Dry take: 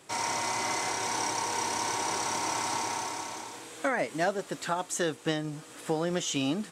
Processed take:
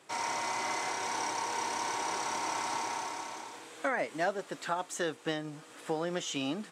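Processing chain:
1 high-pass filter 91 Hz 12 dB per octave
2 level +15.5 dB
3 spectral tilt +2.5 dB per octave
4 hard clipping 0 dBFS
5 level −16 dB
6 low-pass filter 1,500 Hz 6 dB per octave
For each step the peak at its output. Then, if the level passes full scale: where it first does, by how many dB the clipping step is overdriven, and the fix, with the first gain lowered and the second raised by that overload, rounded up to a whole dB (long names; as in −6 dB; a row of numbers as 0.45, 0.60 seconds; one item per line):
−15.0, +0.5, +5.5, 0.0, −16.0, −18.5 dBFS
step 2, 5.5 dB
step 2 +9.5 dB, step 5 −10 dB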